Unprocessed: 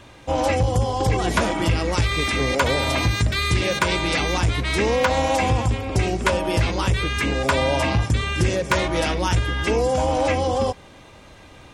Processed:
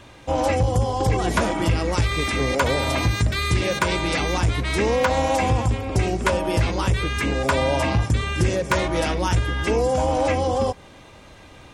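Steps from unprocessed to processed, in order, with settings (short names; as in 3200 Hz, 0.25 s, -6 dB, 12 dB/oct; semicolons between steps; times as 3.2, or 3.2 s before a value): dynamic EQ 3300 Hz, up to -3 dB, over -38 dBFS, Q 0.73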